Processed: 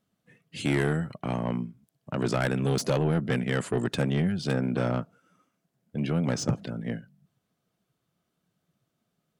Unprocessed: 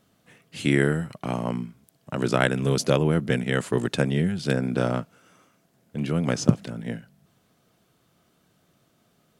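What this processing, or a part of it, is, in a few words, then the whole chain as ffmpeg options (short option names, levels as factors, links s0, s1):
saturation between pre-emphasis and de-emphasis: -af "afftdn=nr=14:nf=-48,highshelf=f=2900:g=10,asoftclip=type=tanh:threshold=0.126,highshelf=f=2900:g=-10"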